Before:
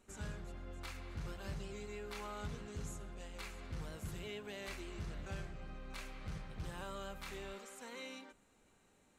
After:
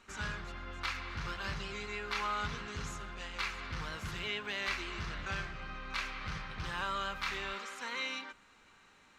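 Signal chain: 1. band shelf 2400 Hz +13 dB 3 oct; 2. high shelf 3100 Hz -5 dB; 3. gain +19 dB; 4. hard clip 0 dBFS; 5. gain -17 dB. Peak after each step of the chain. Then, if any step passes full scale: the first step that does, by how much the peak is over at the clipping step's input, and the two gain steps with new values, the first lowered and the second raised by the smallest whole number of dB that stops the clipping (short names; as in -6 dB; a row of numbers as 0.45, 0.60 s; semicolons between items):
-22.5, -24.5, -5.5, -5.5, -22.5 dBFS; no overload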